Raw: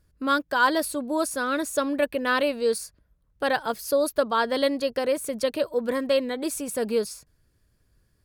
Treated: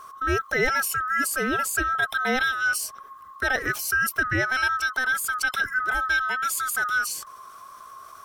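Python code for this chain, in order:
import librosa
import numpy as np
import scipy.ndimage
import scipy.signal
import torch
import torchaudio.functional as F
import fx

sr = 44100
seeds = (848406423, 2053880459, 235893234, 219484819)

y = fx.band_swap(x, sr, width_hz=1000)
y = fx.env_flatten(y, sr, amount_pct=50)
y = y * 10.0 ** (-3.0 / 20.0)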